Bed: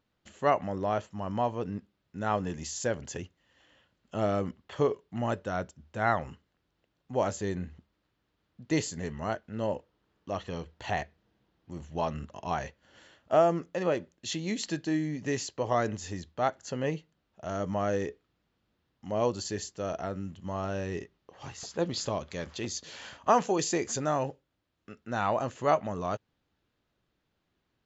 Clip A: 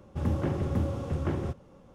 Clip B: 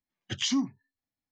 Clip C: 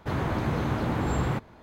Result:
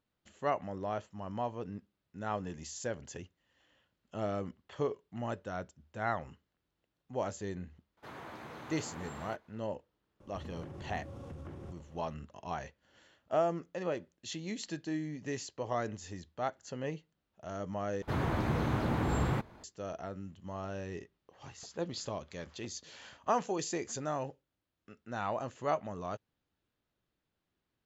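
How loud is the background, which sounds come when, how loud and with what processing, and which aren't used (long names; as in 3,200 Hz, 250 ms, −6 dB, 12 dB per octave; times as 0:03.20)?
bed −7 dB
0:07.97: mix in C −13 dB + high-pass filter 620 Hz 6 dB per octave
0:10.20: mix in A −5.5 dB + downward compressor, threshold −37 dBFS
0:18.02: overwrite with C −4 dB
not used: B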